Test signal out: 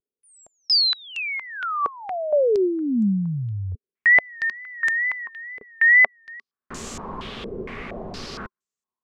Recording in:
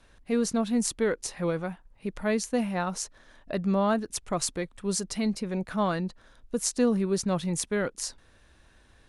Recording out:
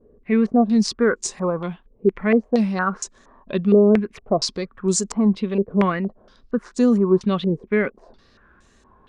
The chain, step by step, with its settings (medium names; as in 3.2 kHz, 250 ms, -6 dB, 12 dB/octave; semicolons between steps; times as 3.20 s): small resonant body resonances 220/390/1100 Hz, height 10 dB, ringing for 40 ms; vibrato 2.2 Hz 89 cents; step-sequenced low-pass 4.3 Hz 450–7200 Hz